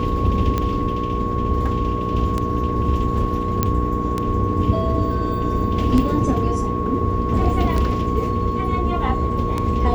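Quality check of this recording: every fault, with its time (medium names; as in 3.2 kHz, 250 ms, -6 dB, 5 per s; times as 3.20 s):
hum 60 Hz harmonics 8 -25 dBFS
tick 33 1/3 rpm -9 dBFS
whine 1.1 kHz -25 dBFS
3.63 s: pop -4 dBFS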